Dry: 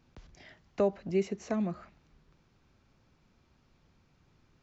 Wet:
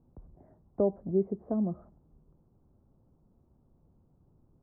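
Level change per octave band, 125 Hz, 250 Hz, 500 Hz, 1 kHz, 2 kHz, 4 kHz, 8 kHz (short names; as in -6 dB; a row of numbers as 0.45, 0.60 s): +2.0 dB, +2.0 dB, +0.5 dB, -4.0 dB, under -20 dB, under -25 dB, n/a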